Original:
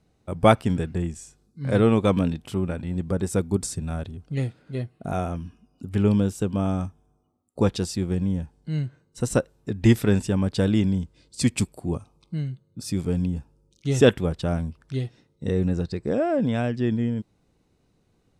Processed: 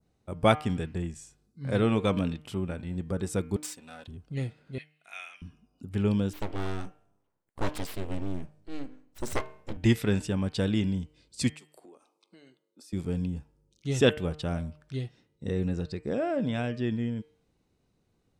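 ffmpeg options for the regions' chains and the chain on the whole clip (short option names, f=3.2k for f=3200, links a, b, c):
-filter_complex "[0:a]asettb=1/sr,asplit=3[a][b][c];[a]atrim=end=3.564[d];[b]atrim=start=3.56:end=4.08,asetpts=PTS-STARTPTS,afade=t=in:d=0.004:c=qsin,afade=t=out:st=0.516:d=0.004:c=qsin,aeval=exprs='if(lt(val(0),0),0.251*val(0),val(0))':c=same,highpass=f=940:p=1,aecho=1:1:4:0.55,atrim=end_sample=22932[e];[c]atrim=start=4.076[f];[d][e]acrossfade=d=0.004:c1=hsin:c2=qsin[g];[g][f]acrossfade=d=0.004:c1=qsin:c2=hsin,asettb=1/sr,asplit=3[h][i][j];[h]atrim=end=4.784[k];[i]atrim=start=4.78:end=5.42,asetpts=PTS-STARTPTS,afade=t=in:d=0.004:c=qsin,afade=t=out:st=0.636:d=0.004:c=qsin,highpass=f=2.3k:t=q:w=3.6,highshelf=f=3.9k:g=-5[l];[j]atrim=start=5.416[m];[k][l]acrossfade=d=0.004:c1=hsin:c2=qsin[n];[n][m]acrossfade=d=0.004:c1=qsin:c2=hsin,asettb=1/sr,asplit=3[o][p][q];[o]atrim=end=6.334[r];[p]atrim=start=6.33:end=9.77,asetpts=PTS-STARTPTS,afade=t=in:d=0.004:c=qsin,afade=t=out:st=3.436:d=0.004:c=qsin,bandreject=f=128.2:t=h:w=4,bandreject=f=256.4:t=h:w=4,bandreject=f=384.6:t=h:w=4,bandreject=f=512.8:t=h:w=4,bandreject=f=641:t=h:w=4,asubboost=boost=3:cutoff=110,aeval=exprs='abs(val(0))':c=same[s];[q]atrim=start=9.766[t];[r][s]acrossfade=d=0.004:c1=hsin:c2=qsin[u];[u][t]acrossfade=d=0.004:c1=qsin:c2=hsin,asettb=1/sr,asplit=3[v][w][x];[v]atrim=end=11.544[y];[w]atrim=start=11.54:end=12.93,asetpts=PTS-STARTPTS,afade=t=in:d=0.004:c=qsin,afade=t=out:st=1.386:d=0.004:c=qsin,highpass=f=330:w=0.5412,highpass=f=330:w=1.3066,acompressor=threshold=-43dB:ratio=12:attack=3.2:release=140:knee=1:detection=peak[z];[x]atrim=start=12.926[aa];[y][z]acrossfade=d=0.004:c1=hsin:c2=qsin[ab];[ab][aa]acrossfade=d=0.004:c1=qsin:c2=hsin,bandreject=f=151.9:t=h:w=4,bandreject=f=303.8:t=h:w=4,bandreject=f=455.7:t=h:w=4,bandreject=f=607.6:t=h:w=4,bandreject=f=759.5:t=h:w=4,bandreject=f=911.4:t=h:w=4,bandreject=f=1.0633k:t=h:w=4,bandreject=f=1.2152k:t=h:w=4,bandreject=f=1.3671k:t=h:w=4,bandreject=f=1.519k:t=h:w=4,bandreject=f=1.6709k:t=h:w=4,bandreject=f=1.8228k:t=h:w=4,bandreject=f=1.9747k:t=h:w=4,bandreject=f=2.1266k:t=h:w=4,bandreject=f=2.2785k:t=h:w=4,bandreject=f=2.4304k:t=h:w=4,bandreject=f=2.5823k:t=h:w=4,bandreject=f=2.7342k:t=h:w=4,bandreject=f=2.8861k:t=h:w=4,bandreject=f=3.038k:t=h:w=4,bandreject=f=3.1899k:t=h:w=4,adynamicequalizer=threshold=0.00794:dfrequency=3000:dqfactor=0.76:tfrequency=3000:tqfactor=0.76:attack=5:release=100:ratio=0.375:range=2.5:mode=boostabove:tftype=bell,volume=-6dB"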